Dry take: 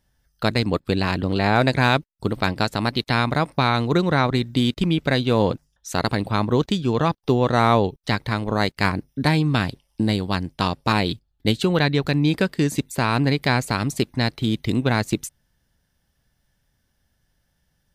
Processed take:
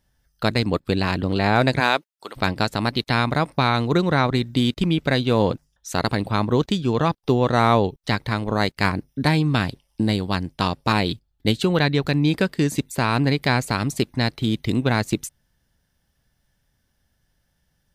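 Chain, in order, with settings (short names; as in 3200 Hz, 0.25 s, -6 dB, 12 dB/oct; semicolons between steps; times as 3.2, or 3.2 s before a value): 1.79–2.35 HPF 270 Hz -> 1000 Hz 12 dB/oct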